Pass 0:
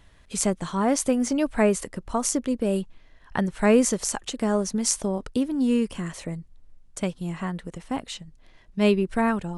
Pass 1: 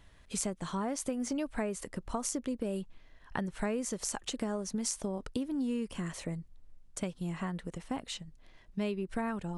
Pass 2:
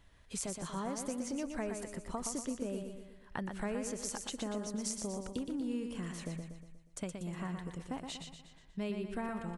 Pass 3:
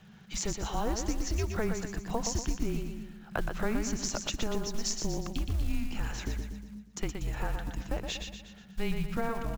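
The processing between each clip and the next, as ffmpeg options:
ffmpeg -i in.wav -af "acompressor=threshold=-27dB:ratio=6,volume=-4dB" out.wav
ffmpeg -i in.wav -af "aecho=1:1:120|240|360|480|600|720:0.501|0.246|0.12|0.059|0.0289|0.0142,volume=-4.5dB" out.wav
ffmpeg -i in.wav -af "aresample=16000,aresample=44100,acrusher=bits=6:mode=log:mix=0:aa=0.000001,afreqshift=-220,volume=8dB" out.wav

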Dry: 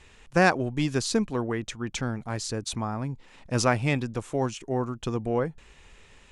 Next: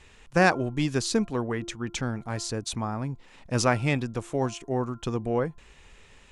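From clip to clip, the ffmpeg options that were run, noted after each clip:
ffmpeg -i in.wav -af "bandreject=frequency=344:width_type=h:width=4,bandreject=frequency=688:width_type=h:width=4,bandreject=frequency=1032:width_type=h:width=4,bandreject=frequency=1376:width_type=h:width=4" out.wav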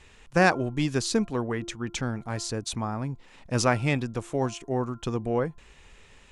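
ffmpeg -i in.wav -af anull out.wav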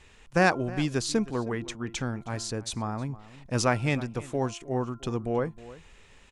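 ffmpeg -i in.wav -filter_complex "[0:a]asplit=2[link_01][link_02];[link_02]adelay=314.9,volume=-18dB,highshelf=frequency=4000:gain=-7.08[link_03];[link_01][link_03]amix=inputs=2:normalize=0,volume=-1.5dB" out.wav

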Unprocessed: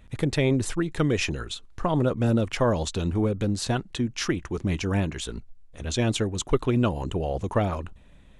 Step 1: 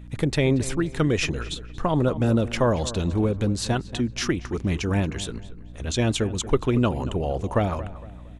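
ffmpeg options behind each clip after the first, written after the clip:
ffmpeg -i in.wav -filter_complex "[0:a]aeval=exprs='val(0)+0.00794*(sin(2*PI*60*n/s)+sin(2*PI*2*60*n/s)/2+sin(2*PI*3*60*n/s)/3+sin(2*PI*4*60*n/s)/4+sin(2*PI*5*60*n/s)/5)':channel_layout=same,asplit=2[link_01][link_02];[link_02]adelay=231,lowpass=frequency=2600:poles=1,volume=-15dB,asplit=2[link_03][link_04];[link_04]adelay=231,lowpass=frequency=2600:poles=1,volume=0.39,asplit=2[link_05][link_06];[link_06]adelay=231,lowpass=frequency=2600:poles=1,volume=0.39,asplit=2[link_07][link_08];[link_08]adelay=231,lowpass=frequency=2600:poles=1,volume=0.39[link_09];[link_01][link_03][link_05][link_07][link_09]amix=inputs=5:normalize=0,volume=1.5dB" out.wav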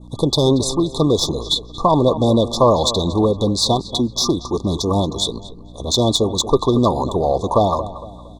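ffmpeg -i in.wav -filter_complex "[0:a]adynamicequalizer=threshold=0.00708:dfrequency=3200:dqfactor=0.7:tfrequency=3200:tqfactor=0.7:attack=5:release=100:ratio=0.375:range=3.5:mode=boostabove:tftype=bell,asplit=2[link_01][link_02];[link_02]highpass=frequency=720:poles=1,volume=13dB,asoftclip=type=tanh:threshold=-8dB[link_03];[link_01][link_03]amix=inputs=2:normalize=0,lowpass=frequency=3400:poles=1,volume=-6dB,afftfilt=real='re*(1-between(b*sr/4096,1200,3400))':imag='im*(1-between(b*sr/4096,1200,3400))':win_size=4096:overlap=0.75,volume=6dB" out.wav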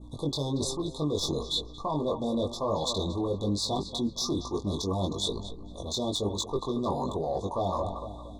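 ffmpeg -i in.wav -af "areverse,acompressor=threshold=-22dB:ratio=6,areverse,flanger=delay=19.5:depth=2.1:speed=1.1,volume=-2dB" out.wav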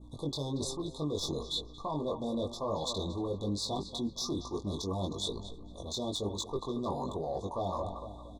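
ffmpeg -i in.wav -filter_complex "[0:a]asplit=2[link_01][link_02];[link_02]adelay=303.2,volume=-28dB,highshelf=frequency=4000:gain=-6.82[link_03];[link_01][link_03]amix=inputs=2:normalize=0,volume=-5dB" out.wav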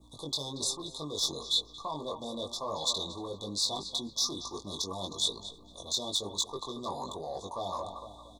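ffmpeg -i in.wav -filter_complex "[0:a]tiltshelf=frequency=860:gain=-8,acrossover=split=100|1600[link_01][link_02][link_03];[link_01]alimiter=level_in=30dB:limit=-24dB:level=0:latency=1,volume=-30dB[link_04];[link_04][link_02][link_03]amix=inputs=3:normalize=0" out.wav

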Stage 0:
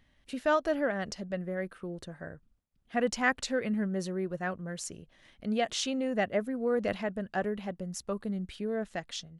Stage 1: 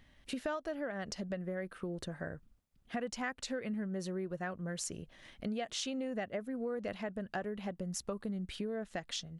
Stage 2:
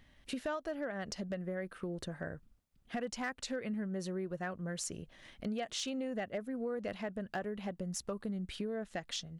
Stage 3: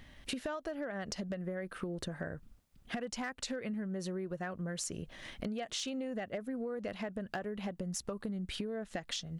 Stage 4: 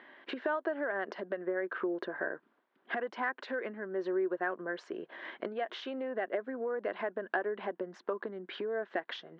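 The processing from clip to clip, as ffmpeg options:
ffmpeg -i in.wav -af "acompressor=threshold=-39dB:ratio=6,volume=3.5dB" out.wav
ffmpeg -i in.wav -af "asoftclip=type=hard:threshold=-29dB" out.wav
ffmpeg -i in.wav -af "acompressor=threshold=-44dB:ratio=5,volume=8dB" out.wav
ffmpeg -i in.wav -af "highpass=frequency=300:width=0.5412,highpass=frequency=300:width=1.3066,equalizer=frequency=370:width_type=q:width=4:gain=8,equalizer=frequency=670:width_type=q:width=4:gain=3,equalizer=frequency=1000:width_type=q:width=4:gain=8,equalizer=frequency=1600:width_type=q:width=4:gain=8,equalizer=frequency=2600:width_type=q:width=4:gain=-5,lowpass=frequency=3000:width=0.5412,lowpass=frequency=3000:width=1.3066,volume=2.5dB" out.wav

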